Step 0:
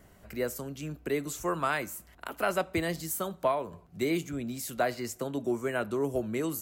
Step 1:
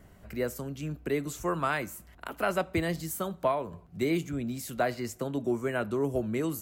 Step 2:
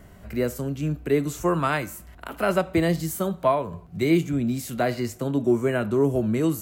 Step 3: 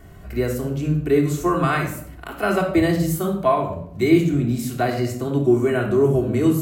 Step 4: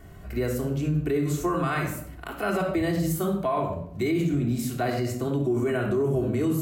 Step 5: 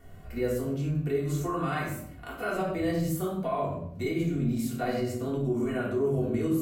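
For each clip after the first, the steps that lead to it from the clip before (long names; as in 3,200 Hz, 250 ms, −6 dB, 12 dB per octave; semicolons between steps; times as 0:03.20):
bass and treble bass +4 dB, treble −3 dB
harmonic and percussive parts rebalanced harmonic +8 dB; level +1.5 dB
convolution reverb RT60 0.65 s, pre-delay 3 ms, DRR 0 dB
brickwall limiter −15 dBFS, peak gain reduction 10.5 dB; level −2.5 dB
rectangular room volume 140 cubic metres, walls furnished, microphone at 1.8 metres; level −8 dB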